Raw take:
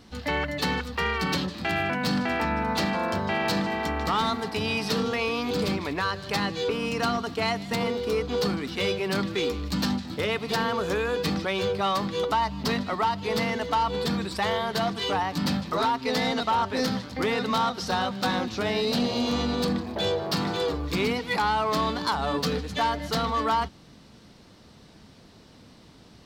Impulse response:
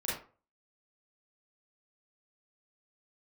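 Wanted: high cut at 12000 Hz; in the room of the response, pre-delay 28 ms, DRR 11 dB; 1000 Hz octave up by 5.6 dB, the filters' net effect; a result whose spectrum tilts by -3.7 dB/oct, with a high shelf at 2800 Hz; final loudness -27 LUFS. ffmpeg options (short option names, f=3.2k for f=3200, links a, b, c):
-filter_complex "[0:a]lowpass=12k,equalizer=f=1k:t=o:g=7.5,highshelf=f=2.8k:g=-6.5,asplit=2[a][b];[1:a]atrim=start_sample=2205,adelay=28[c];[b][c]afir=irnorm=-1:irlink=0,volume=-16dB[d];[a][d]amix=inputs=2:normalize=0,volume=-3dB"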